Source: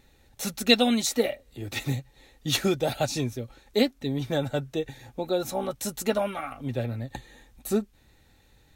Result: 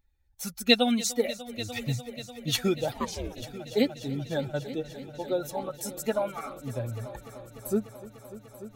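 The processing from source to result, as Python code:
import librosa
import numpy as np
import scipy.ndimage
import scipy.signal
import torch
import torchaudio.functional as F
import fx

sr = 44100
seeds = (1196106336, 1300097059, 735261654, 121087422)

y = fx.bin_expand(x, sr, power=1.5)
y = fx.echo_heads(y, sr, ms=296, heads='all three', feedback_pct=68, wet_db=-19.5)
y = fx.ring_mod(y, sr, carrier_hz=fx.line((2.91, 540.0), (3.41, 130.0)), at=(2.91, 3.41), fade=0.02)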